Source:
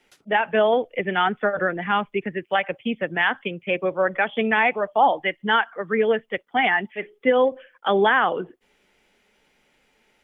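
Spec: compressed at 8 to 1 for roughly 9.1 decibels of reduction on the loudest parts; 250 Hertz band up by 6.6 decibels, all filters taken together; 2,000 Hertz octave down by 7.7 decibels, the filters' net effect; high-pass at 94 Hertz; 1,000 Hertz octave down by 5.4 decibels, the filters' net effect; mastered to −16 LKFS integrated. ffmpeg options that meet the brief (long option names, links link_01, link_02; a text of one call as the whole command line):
ffmpeg -i in.wav -af "highpass=94,equalizer=frequency=250:width_type=o:gain=8.5,equalizer=frequency=1000:width_type=o:gain=-6.5,equalizer=frequency=2000:width_type=o:gain=-7.5,acompressor=threshold=-22dB:ratio=8,volume=12.5dB" out.wav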